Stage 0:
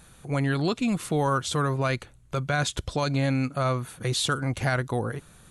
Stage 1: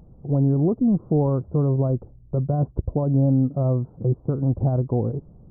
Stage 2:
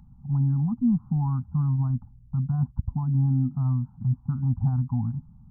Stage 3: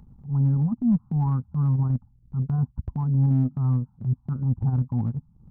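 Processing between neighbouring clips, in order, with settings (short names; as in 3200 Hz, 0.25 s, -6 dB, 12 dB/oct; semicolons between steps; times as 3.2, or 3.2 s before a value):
Gaussian blur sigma 14 samples; gain +7.5 dB
Chebyshev band-stop 250–820 Hz, order 4; gain -2 dB
transient shaper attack -7 dB, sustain -11 dB; gain +3 dB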